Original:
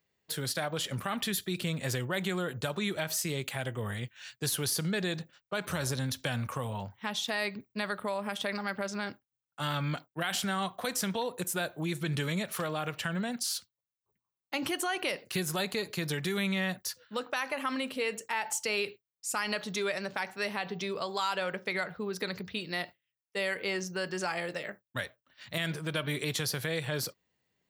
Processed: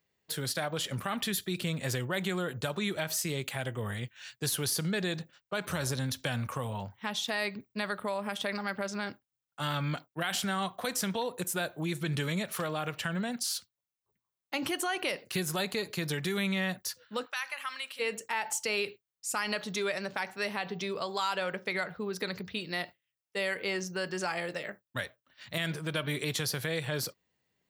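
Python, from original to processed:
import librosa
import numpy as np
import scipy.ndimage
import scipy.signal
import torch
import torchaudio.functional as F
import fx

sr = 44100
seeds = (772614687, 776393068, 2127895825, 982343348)

y = fx.highpass(x, sr, hz=1400.0, slope=12, at=(17.25, 17.99), fade=0.02)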